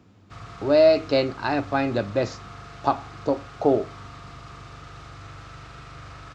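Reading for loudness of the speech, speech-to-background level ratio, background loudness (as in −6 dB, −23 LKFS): −23.0 LKFS, 19.0 dB, −42.0 LKFS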